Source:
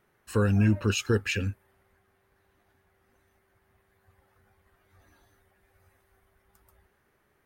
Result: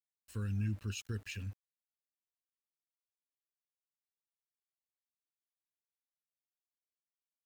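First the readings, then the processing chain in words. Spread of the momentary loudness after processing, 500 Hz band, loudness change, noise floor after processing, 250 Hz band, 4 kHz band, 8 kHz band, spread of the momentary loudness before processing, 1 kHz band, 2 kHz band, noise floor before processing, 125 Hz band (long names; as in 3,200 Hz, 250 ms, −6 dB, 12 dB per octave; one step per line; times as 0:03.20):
11 LU, −23.5 dB, −13.5 dB, below −85 dBFS, −16.0 dB, −14.0 dB, −12.0 dB, 8 LU, −21.0 dB, −16.5 dB, −70 dBFS, −11.0 dB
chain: guitar amp tone stack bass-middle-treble 6-0-2
centre clipping without the shift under −58 dBFS
level +2.5 dB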